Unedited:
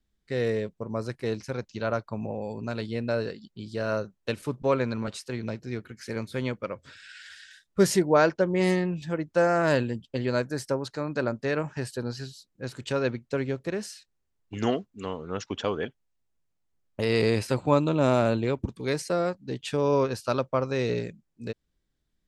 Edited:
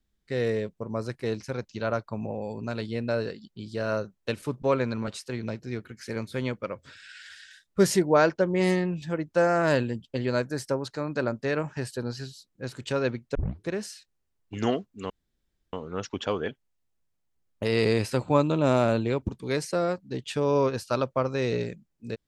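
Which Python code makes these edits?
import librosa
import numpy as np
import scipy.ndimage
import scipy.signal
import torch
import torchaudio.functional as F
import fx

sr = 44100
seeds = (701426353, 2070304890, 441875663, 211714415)

y = fx.edit(x, sr, fx.tape_start(start_s=13.35, length_s=0.33),
    fx.insert_room_tone(at_s=15.1, length_s=0.63), tone=tone)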